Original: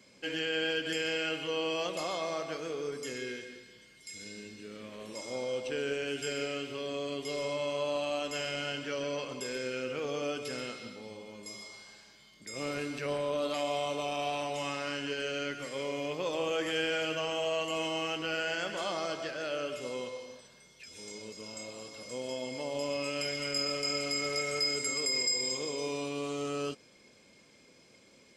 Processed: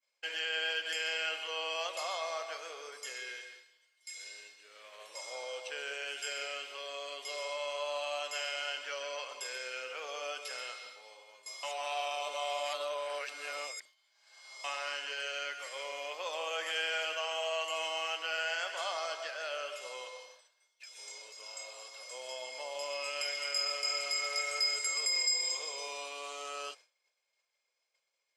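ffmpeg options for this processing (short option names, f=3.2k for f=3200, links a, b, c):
-filter_complex "[0:a]asplit=3[a][b][c];[a]atrim=end=11.632[d];[b]atrim=start=11.628:end=14.642,asetpts=PTS-STARTPTS,areverse[e];[c]atrim=start=14.638[f];[d][e]acrossfade=d=0.004:c1=hsin:c2=hsin[g];[g][f]acrossfade=d=0.004:c1=hsin:c2=hsin,highpass=f=640:w=0.5412,highpass=f=640:w=1.3066,agate=range=-33dB:threshold=-49dB:ratio=3:detection=peak"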